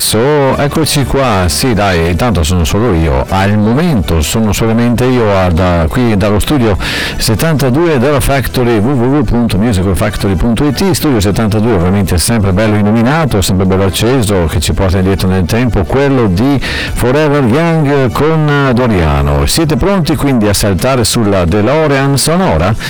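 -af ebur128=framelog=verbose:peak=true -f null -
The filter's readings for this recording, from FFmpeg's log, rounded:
Integrated loudness:
  I:         -10.1 LUFS
  Threshold: -20.1 LUFS
Loudness range:
  LRA:         0.9 LU
  Threshold: -30.1 LUFS
  LRA low:   -10.6 LUFS
  LRA high:   -9.7 LUFS
True peak:
  Peak:       -3.7 dBFS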